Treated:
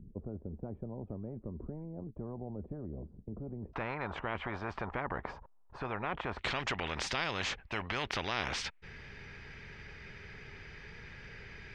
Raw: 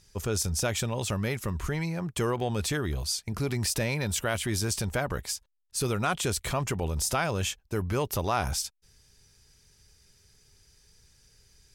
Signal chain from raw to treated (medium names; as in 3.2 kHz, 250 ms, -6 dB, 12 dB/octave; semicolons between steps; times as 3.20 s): four-pole ladder low-pass 260 Hz, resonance 50%, from 3.73 s 1.1 kHz, from 6.38 s 2.5 kHz; spectrum-flattening compressor 4:1; trim +3.5 dB